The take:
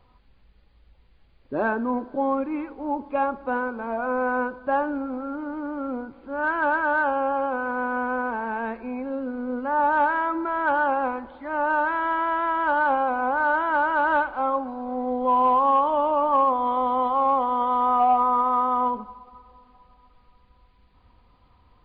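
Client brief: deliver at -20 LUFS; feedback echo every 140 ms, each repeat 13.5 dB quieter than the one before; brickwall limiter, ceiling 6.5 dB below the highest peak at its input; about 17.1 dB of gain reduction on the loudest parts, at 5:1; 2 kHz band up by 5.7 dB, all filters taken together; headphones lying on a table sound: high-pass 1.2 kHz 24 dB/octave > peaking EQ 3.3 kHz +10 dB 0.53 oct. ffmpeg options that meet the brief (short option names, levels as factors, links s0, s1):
-af "equalizer=f=2000:t=o:g=9,acompressor=threshold=0.0178:ratio=5,alimiter=level_in=2:limit=0.0631:level=0:latency=1,volume=0.501,highpass=f=1200:w=0.5412,highpass=f=1200:w=1.3066,equalizer=f=3300:t=o:w=0.53:g=10,aecho=1:1:140|280:0.211|0.0444,volume=13.3"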